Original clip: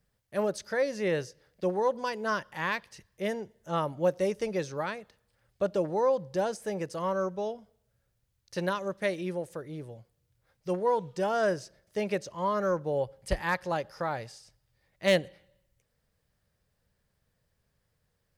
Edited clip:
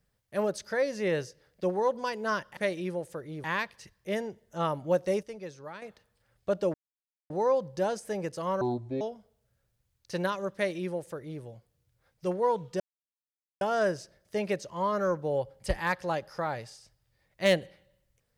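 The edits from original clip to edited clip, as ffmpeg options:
-filter_complex "[0:a]asplit=9[s0][s1][s2][s3][s4][s5][s6][s7][s8];[s0]atrim=end=2.572[s9];[s1]atrim=start=8.978:end=9.852[s10];[s2]atrim=start=2.568:end=4.362[s11];[s3]atrim=start=4.358:end=4.952,asetpts=PTS-STARTPTS,volume=0.316[s12];[s4]atrim=start=4.948:end=5.87,asetpts=PTS-STARTPTS,afade=t=out:st=0.918:d=0.004:c=hsin,apad=pad_dur=0.56[s13];[s5]atrim=start=5.87:end=7.184,asetpts=PTS-STARTPTS,afade=t=in:d=0.004:c=hsin[s14];[s6]atrim=start=7.18:end=7.44,asetpts=PTS-STARTPTS,asetrate=28665,aresample=44100[s15];[s7]atrim=start=7.436:end=11.23,asetpts=PTS-STARTPTS,afade=t=out:st=3.79:d=0.004:c=hsin,apad=pad_dur=0.81[s16];[s8]atrim=start=11.23,asetpts=PTS-STARTPTS,afade=t=in:d=0.004:c=hsin[s17];[s9][s10]acrossfade=d=0.004:c1=hsin:c2=hsin[s18];[s18][s11]acrossfade=d=0.004:c1=hsin:c2=hsin[s19];[s19][s12]acrossfade=d=0.004:c1=hsin:c2=hsin[s20];[s13][s14]concat=n=2:v=0:a=1[s21];[s20][s21]acrossfade=d=0.004:c1=hsin:c2=hsin[s22];[s22][s15]acrossfade=d=0.004:c1=hsin:c2=hsin[s23];[s16][s17]concat=n=2:v=0:a=1[s24];[s23][s24]acrossfade=d=0.004:c1=hsin:c2=hsin"

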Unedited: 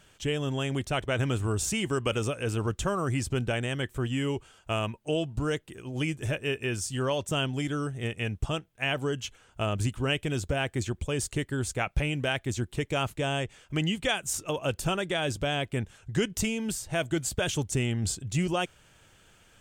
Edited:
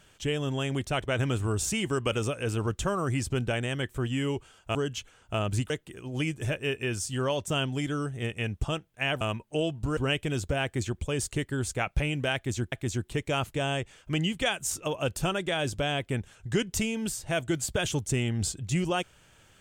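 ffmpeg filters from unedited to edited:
-filter_complex "[0:a]asplit=6[s0][s1][s2][s3][s4][s5];[s0]atrim=end=4.752[s6];[s1]atrim=start=9.018:end=9.972[s7];[s2]atrim=start=5.508:end=9.022[s8];[s3]atrim=start=4.748:end=5.512[s9];[s4]atrim=start=9.968:end=12.722[s10];[s5]atrim=start=12.348[s11];[s6][s7]acrossfade=d=0.004:c1=hsin:c2=hsin[s12];[s12][s8]acrossfade=d=0.004:c1=hsin:c2=hsin[s13];[s13][s9]acrossfade=d=0.004:c1=hsin:c2=hsin[s14];[s14][s10]acrossfade=d=0.004:c1=hsin:c2=hsin[s15];[s15][s11]acrossfade=d=0.004:c1=hsin:c2=hsin"

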